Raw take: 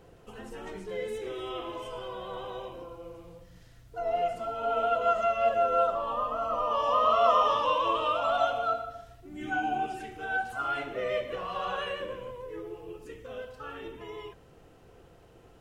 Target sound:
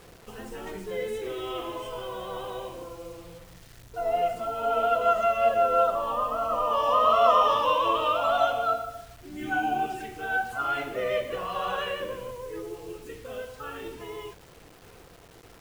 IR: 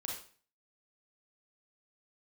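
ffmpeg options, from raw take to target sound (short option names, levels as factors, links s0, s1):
-af "acrusher=bits=8:mix=0:aa=0.000001,volume=1.41"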